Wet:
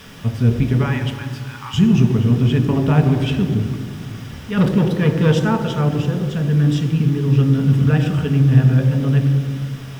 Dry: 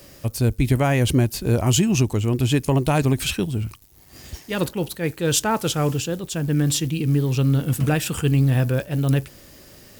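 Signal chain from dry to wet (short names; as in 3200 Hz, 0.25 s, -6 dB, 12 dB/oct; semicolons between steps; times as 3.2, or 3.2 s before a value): LPF 1200 Hz 6 dB/oct; 4.57–5.32 sample leveller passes 2; added noise pink -42 dBFS; 0.83–1.74 brick-wall FIR high-pass 780 Hz; reverb RT60 2.0 s, pre-delay 3 ms, DRR 4.5 dB; gain -4.5 dB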